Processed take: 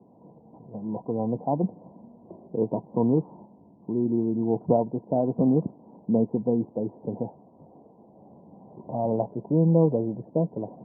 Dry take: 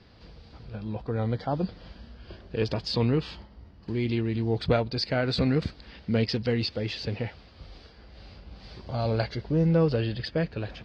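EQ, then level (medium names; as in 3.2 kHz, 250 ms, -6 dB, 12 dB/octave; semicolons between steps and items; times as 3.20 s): high-pass 150 Hz 24 dB/octave; rippled Chebyshev low-pass 1 kHz, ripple 3 dB; +5.0 dB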